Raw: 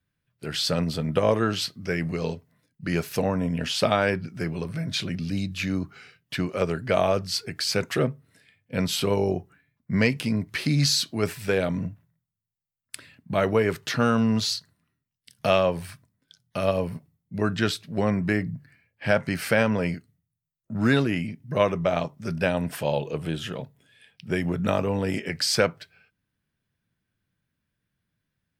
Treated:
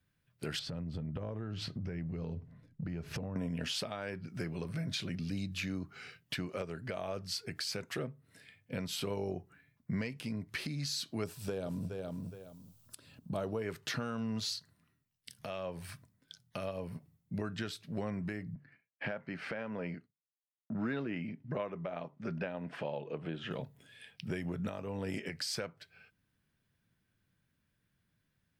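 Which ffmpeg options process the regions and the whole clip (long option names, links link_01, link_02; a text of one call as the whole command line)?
ffmpeg -i in.wav -filter_complex "[0:a]asettb=1/sr,asplit=3[link_01][link_02][link_03];[link_01]atrim=end=0.594[link_04];[link_02]atrim=start=0.59:end=3.36,asetpts=PTS-STARTPTS,afade=type=in:duration=0.004:curve=qsin,afade=type=out:start_time=2.766:duration=0.004:curve=qsin,aemphasis=mode=reproduction:type=riaa,acompressor=threshold=-33dB:ratio=6:attack=3.2:release=140:knee=1:detection=peak[link_05];[link_03]atrim=start=3.356[link_06];[link_04][link_05]acrossfade=duration=0.004:curve1=hsin:curve2=qsin[link_07];[link_07][link_06]acrossfade=duration=0.004:curve1=qsin:curve2=hsin,asettb=1/sr,asplit=3[link_08][link_09][link_10];[link_08]atrim=end=11.244[link_11];[link_09]atrim=start=11.24:end=13.62,asetpts=PTS-STARTPTS,afade=type=in:duration=0.004:curve=qsin,afade=type=out:start_time=2.376:duration=0.004:curve=qsin,equalizer=frequency=2000:width=1.8:gain=-15,acompressor=mode=upward:threshold=-46dB:ratio=2.5:attack=3.2:release=140:knee=2.83:detection=peak,aecho=1:1:417|834:0.237|0.0403,atrim=end_sample=104958[link_12];[link_10]atrim=start=13.616[link_13];[link_11][link_12]acrossfade=duration=0.004:curve1=hsin:curve2=qsin[link_14];[link_14][link_13]acrossfade=duration=0.004:curve1=qsin:curve2=hsin,asettb=1/sr,asplit=3[link_15][link_16][link_17];[link_15]atrim=end=18.554[link_18];[link_16]atrim=start=18.55:end=23.51,asetpts=PTS-STARTPTS,afade=type=in:duration=0.004:curve=qsin,afade=type=out:start_time=4.956:duration=0.004:curve=qsin,highpass=160,lowpass=2600,agate=range=-33dB:threshold=-56dB:ratio=3:release=100:detection=peak[link_19];[link_17]atrim=start=23.506[link_20];[link_18][link_19]acrossfade=duration=0.004:curve1=hsin:curve2=qsin[link_21];[link_21][link_20]acrossfade=duration=0.004:curve1=qsin:curve2=hsin,acompressor=threshold=-38dB:ratio=3,alimiter=level_in=2.5dB:limit=-24dB:level=0:latency=1:release=488,volume=-2.5dB,volume=1dB" out.wav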